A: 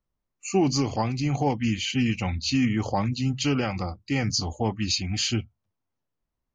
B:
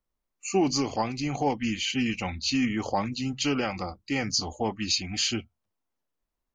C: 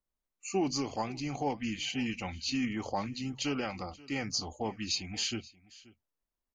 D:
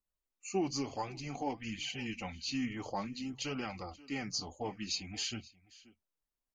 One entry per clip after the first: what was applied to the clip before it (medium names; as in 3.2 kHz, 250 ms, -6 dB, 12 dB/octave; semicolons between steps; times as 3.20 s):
peaking EQ 110 Hz -10.5 dB 1.4 oct
delay 530 ms -21.5 dB; trim -6.5 dB
flange 0.55 Hz, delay 0.7 ms, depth 6.9 ms, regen -38%